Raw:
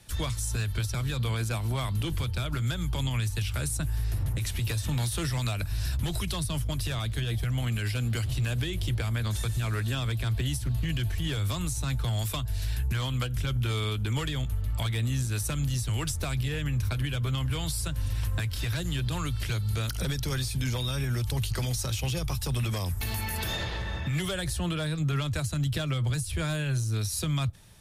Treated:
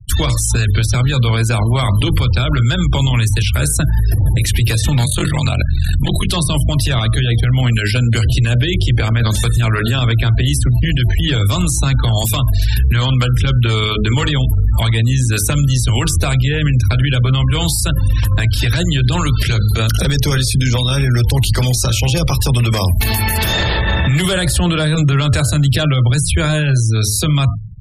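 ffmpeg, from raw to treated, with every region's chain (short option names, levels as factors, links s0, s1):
-filter_complex "[0:a]asettb=1/sr,asplit=3[s0][s1][s2];[s0]atrim=end=5.044[s3];[s1]atrim=start=5.04:end=6.3,asetpts=PTS-STARTPTS,afade=t=in:d=0.004:c=qsin,afade=t=out:st=1.256:d=0.004:c=qsin,aeval=exprs='val(0)*sin(2*PI*22*n/s)':c=same,asuperstop=centerf=5300:order=8:qfactor=4[s4];[s2]atrim=start=6.296[s5];[s3][s4]acrossfade=d=0.004:c1=hsin:c2=qsin[s6];[s6][s5]acrossfade=d=0.004:c1=qsin:c2=hsin,asettb=1/sr,asplit=3[s7][s8][s9];[s7]atrim=end=23.874[s10];[s8]atrim=start=23.87:end=25.69,asetpts=PTS-STARTPTS,afade=t=in:d=0.004:c=qsin,afade=t=out:st=1.816:d=0.004:c=qsin,bandreject=f=6000:w=10,acontrast=33[s11];[s9]atrim=start=25.686[s12];[s10][s11]acrossfade=d=0.004:c1=hsin:c2=qsin[s13];[s13][s12]acrossfade=d=0.004:c1=qsin:c2=hsin,bandreject=f=53.3:t=h:w=4,bandreject=f=106.6:t=h:w=4,bandreject=f=159.9:t=h:w=4,bandreject=f=213.2:t=h:w=4,bandreject=f=266.5:t=h:w=4,bandreject=f=319.8:t=h:w=4,bandreject=f=373.1:t=h:w=4,bandreject=f=426.4:t=h:w=4,bandreject=f=479.7:t=h:w=4,bandreject=f=533:t=h:w=4,bandreject=f=586.3:t=h:w=4,bandreject=f=639.6:t=h:w=4,bandreject=f=692.9:t=h:w=4,bandreject=f=746.2:t=h:w=4,bandreject=f=799.5:t=h:w=4,bandreject=f=852.8:t=h:w=4,bandreject=f=906.1:t=h:w=4,bandreject=f=959.4:t=h:w=4,bandreject=f=1012.7:t=h:w=4,bandreject=f=1066:t=h:w=4,bandreject=f=1119.3:t=h:w=4,bandreject=f=1172.6:t=h:w=4,bandreject=f=1225.9:t=h:w=4,bandreject=f=1279.2:t=h:w=4,bandreject=f=1332.5:t=h:w=4,bandreject=f=1385.8:t=h:w=4,bandreject=f=1439.1:t=h:w=4,bandreject=f=1492.4:t=h:w=4,bandreject=f=1545.7:t=h:w=4,afftfilt=real='re*gte(hypot(re,im),0.00891)':imag='im*gte(hypot(re,im),0.00891)':win_size=1024:overlap=0.75,alimiter=level_in=29.9:limit=0.891:release=50:level=0:latency=1,volume=0.473"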